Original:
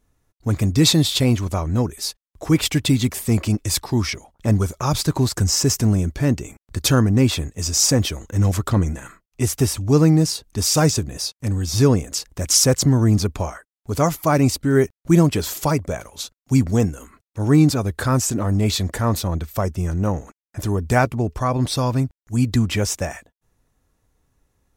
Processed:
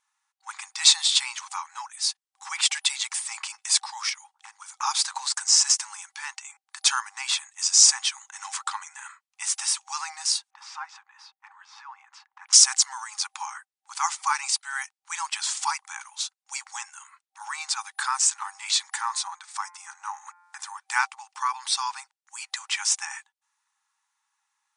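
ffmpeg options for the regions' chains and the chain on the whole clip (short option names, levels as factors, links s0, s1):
-filter_complex "[0:a]asettb=1/sr,asplit=3[s0][s1][s2];[s0]atrim=end=4.094[s3];[s1]atrim=start=4.09:end=4.75,asetpts=PTS-STARTPTS,afade=t=in:d=0.004:c=qsin,afade=t=out:st=0.656:d=0.004:c=qsin,acompressor=threshold=0.0562:ratio=10:attack=3.2:release=140:knee=1:detection=peak,aeval=exprs='0.075*(abs(mod(val(0)/0.075+3,4)-2)-1)':c=same[s4];[s2]atrim=start=4.746[s5];[s3][s4]acrossfade=d=0.004:c1=hsin:c2=qsin[s6];[s6][s5]acrossfade=d=0.004:c1=qsin:c2=hsin,asettb=1/sr,asplit=3[s7][s8][s9];[s7]atrim=end=10.504[s10];[s8]atrim=start=10.5:end=12.53,asetpts=PTS-STARTPTS,afade=t=in:d=0.004:c=qsin,afade=t=out:st=2.026:d=0.004:c=qsin,lowpass=1400,acompressor=threshold=0.126:ratio=6:attack=3.2:release=140:knee=1:detection=peak[s11];[s9]atrim=start=12.526[s12];[s10][s11]acrossfade=d=0.004:c1=hsin:c2=qsin[s13];[s13][s12]acrossfade=d=0.004:c1=qsin:c2=hsin,asettb=1/sr,asplit=3[s14][s15][s16];[s14]atrim=end=19.064[s17];[s15]atrim=start=19.06:end=20.79,asetpts=PTS-STARTPTS,afade=t=in:d=0.004:c=qsin,afade=t=out:st=1.726:d=0.004:c=qsin,equalizer=f=2900:w=2.5:g=-5,bandreject=f=175.2:t=h:w=4,bandreject=f=350.4:t=h:w=4,bandreject=f=525.6:t=h:w=4,bandreject=f=700.8:t=h:w=4,bandreject=f=876:t=h:w=4,bandreject=f=1051.2:t=h:w=4,bandreject=f=1226.4:t=h:w=4,bandreject=f=1401.6:t=h:w=4,bandreject=f=1576.8:t=h:w=4,bandreject=f=1752:t=h:w=4,bandreject=f=1927.2:t=h:w=4,bandreject=f=2102.4:t=h:w=4,bandreject=f=2277.6:t=h:w=4,bandreject=f=2452.8:t=h:w=4,acompressor=mode=upward:threshold=0.0501:ratio=2.5:attack=3.2:release=140:knee=2.83:detection=peak[s18];[s16]atrim=start=20.786[s19];[s17][s18]acrossfade=d=0.004:c1=hsin:c2=qsin[s20];[s20][s19]acrossfade=d=0.004:c1=qsin:c2=hsin,afftfilt=real='re*between(b*sr/4096,780,9900)':imag='im*between(b*sr/4096,780,9900)':win_size=4096:overlap=0.75,adynamicequalizer=threshold=0.0224:dfrequency=3800:dqfactor=0.7:tfrequency=3800:tqfactor=0.7:attack=5:release=100:ratio=0.375:range=2:mode=boostabove:tftype=highshelf,volume=0.891"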